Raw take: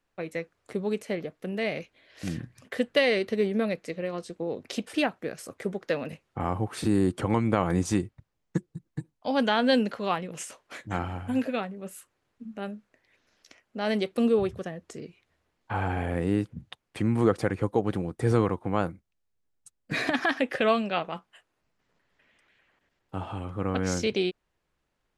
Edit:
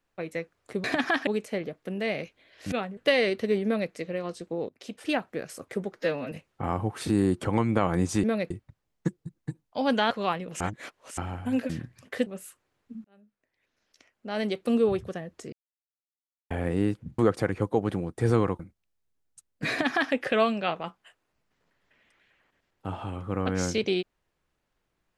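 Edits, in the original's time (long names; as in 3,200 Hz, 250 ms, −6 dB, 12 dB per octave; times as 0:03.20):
0:02.29–0:02.86: swap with 0:11.52–0:11.77
0:03.54–0:03.81: duplicate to 0:08.00
0:04.58–0:05.12: fade in, from −23 dB
0:05.83–0:06.08: time-stretch 1.5×
0:09.60–0:09.93: remove
0:10.43–0:11.00: reverse
0:12.55–0:14.34: fade in
0:15.03–0:16.01: silence
0:16.69–0:17.20: remove
0:18.61–0:18.88: remove
0:19.99–0:20.42: duplicate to 0:00.84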